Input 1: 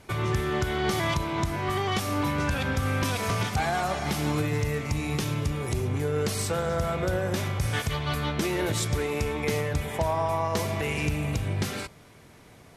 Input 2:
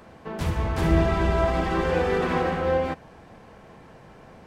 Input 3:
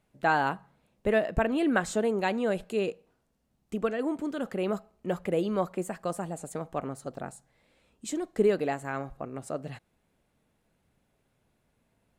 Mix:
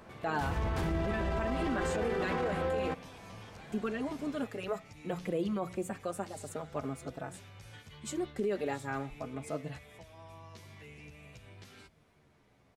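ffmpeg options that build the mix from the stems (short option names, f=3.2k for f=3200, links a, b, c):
-filter_complex "[0:a]lowpass=f=3.6k:p=1,acrossover=split=390|1900[a][b][c];[a]acompressor=threshold=-40dB:ratio=4[d];[b]acompressor=threshold=-47dB:ratio=4[e];[c]acompressor=threshold=-41dB:ratio=4[f];[d][e][f]amix=inputs=3:normalize=0,asplit=2[g][h];[h]adelay=11.2,afreqshift=-0.73[i];[g][i]amix=inputs=2:normalize=1,volume=-11dB[j];[1:a]volume=-5dB[k];[2:a]bandreject=f=60:t=h:w=6,bandreject=f=120:t=h:w=6,bandreject=f=180:t=h:w=6,asplit=2[l][m];[m]adelay=4.3,afreqshift=0.43[n];[l][n]amix=inputs=2:normalize=1,volume=-0.5dB[o];[j][k][o]amix=inputs=3:normalize=0,alimiter=level_in=0.5dB:limit=-24dB:level=0:latency=1:release=30,volume=-0.5dB"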